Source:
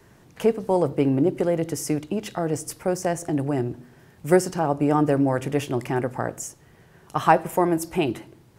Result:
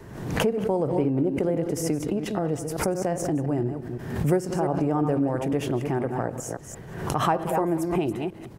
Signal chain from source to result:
delay that plays each chunk backwards 173 ms, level −9 dB
tilt shelving filter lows +4.5 dB, about 1,300 Hz
downward compressor 2 to 1, threshold −40 dBFS, peak gain reduction 17 dB
far-end echo of a speakerphone 190 ms, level −16 dB
background raised ahead of every attack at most 60 dB per second
level +6.5 dB

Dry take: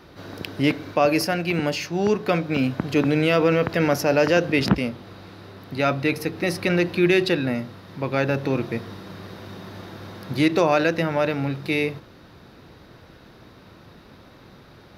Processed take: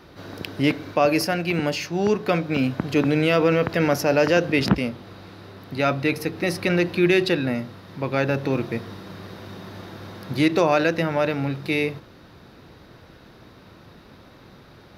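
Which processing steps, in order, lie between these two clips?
0:08.51–0:09.27: floating-point word with a short mantissa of 6 bits

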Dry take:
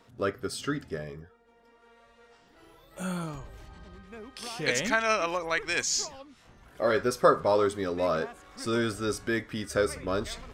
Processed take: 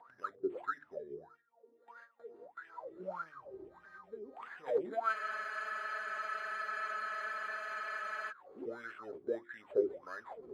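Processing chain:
high-pass filter 55 Hz 12 dB per octave
noise gate with hold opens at −48 dBFS
upward compression, threshold −30 dBFS
all-pass phaser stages 6, 2.6 Hz, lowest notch 740–5,000 Hz
bad sample-rate conversion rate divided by 8×, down none, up hold
LFO wah 1.6 Hz 350–1,700 Hz, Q 16
mains-hum notches 50/100/150/200/250/300/350 Hz
frozen spectrum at 0:05.16, 3.13 s
level +9 dB

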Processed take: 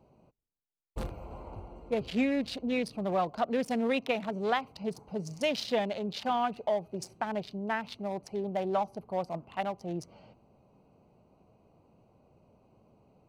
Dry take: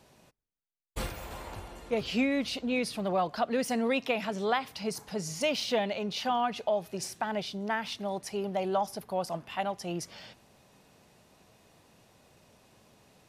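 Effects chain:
adaptive Wiener filter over 25 samples

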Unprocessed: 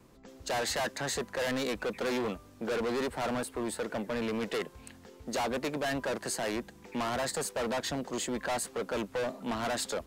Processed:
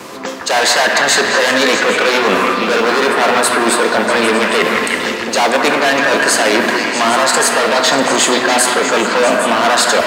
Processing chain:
meter weighting curve A
reversed playback
downward compressor 10 to 1, threshold −43 dBFS, peak gain reduction 15 dB
reversed playback
noise that follows the level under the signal 35 dB
echo through a band-pass that steps 161 ms, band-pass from 1,300 Hz, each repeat 0.7 octaves, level 0 dB
on a send at −4 dB: convolution reverb RT60 3.3 s, pre-delay 4 ms
on the sum: boost into a limiter +34 dB
level −1 dB

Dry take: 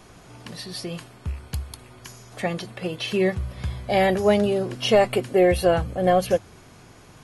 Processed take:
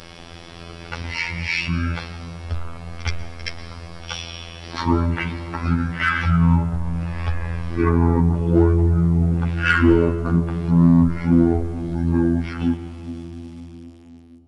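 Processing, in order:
fade-out on the ending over 2.35 s
treble cut that deepens with the level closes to 1,400 Hz, closed at −17.5 dBFS
high-shelf EQ 3,100 Hz +8 dB
echo ahead of the sound 36 ms −17 dB
phases set to zero 169 Hz
in parallel at −3.5 dB: gain into a clipping stage and back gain 24.5 dB
on the sum: bit-depth reduction 10 bits, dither none
convolution reverb RT60 2.4 s, pre-delay 52 ms, DRR 9.5 dB
wrong playback speed 15 ips tape played at 7.5 ips
level +4.5 dB

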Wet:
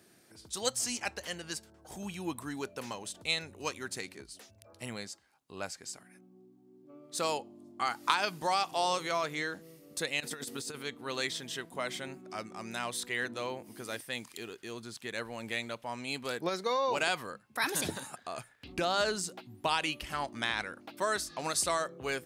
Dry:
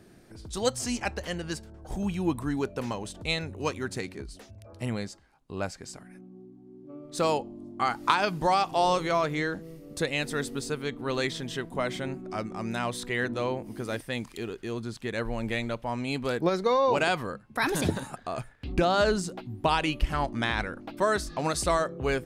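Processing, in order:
high-pass filter 70 Hz
spectral tilt +2.5 dB per octave
0:10.20–0:10.83: compressor whose output falls as the input rises −34 dBFS, ratio −0.5
level −5.5 dB

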